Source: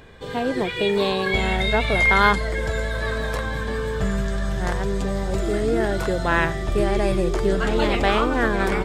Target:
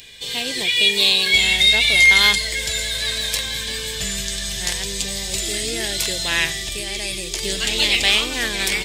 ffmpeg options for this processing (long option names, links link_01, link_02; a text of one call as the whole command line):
ffmpeg -i in.wav -filter_complex "[0:a]asettb=1/sr,asplit=3[link_01][link_02][link_03];[link_01]atrim=end=6.574[link_04];[link_02]atrim=start=6.57:end=7.43,asetpts=PTS-STARTPTS,afade=type=in:duration=0.004:curve=qsin,afade=type=out:start_time=0.856:duration=0.004:curve=qsin,acompressor=threshold=-21dB:ratio=6[link_05];[link_03]atrim=start=7.426[link_06];[link_04][link_05]acrossfade=duration=0.004:curve1=hsin:curve2=qsin[link_07];[link_07][link_06]acrossfade=duration=0.004:curve1=qsin:curve2=hsin,aexciter=amount=9.3:drive=8.8:freq=2100,volume=-8.5dB" out.wav